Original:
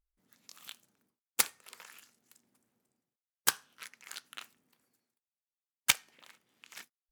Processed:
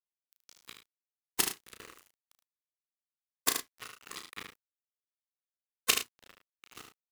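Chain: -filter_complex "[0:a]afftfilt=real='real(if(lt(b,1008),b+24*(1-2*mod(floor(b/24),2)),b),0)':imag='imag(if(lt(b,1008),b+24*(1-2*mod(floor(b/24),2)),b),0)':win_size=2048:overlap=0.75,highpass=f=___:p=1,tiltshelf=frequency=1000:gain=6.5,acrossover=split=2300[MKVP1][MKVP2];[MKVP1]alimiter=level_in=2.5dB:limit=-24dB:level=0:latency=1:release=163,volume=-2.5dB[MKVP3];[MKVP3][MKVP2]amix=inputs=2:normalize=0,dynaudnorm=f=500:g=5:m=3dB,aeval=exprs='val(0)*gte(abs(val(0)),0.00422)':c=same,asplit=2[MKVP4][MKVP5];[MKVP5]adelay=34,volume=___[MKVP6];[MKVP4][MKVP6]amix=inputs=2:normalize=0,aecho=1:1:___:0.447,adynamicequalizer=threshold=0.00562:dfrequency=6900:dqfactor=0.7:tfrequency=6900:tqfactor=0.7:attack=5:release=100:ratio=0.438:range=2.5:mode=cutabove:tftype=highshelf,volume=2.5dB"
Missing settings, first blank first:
130, -7dB, 75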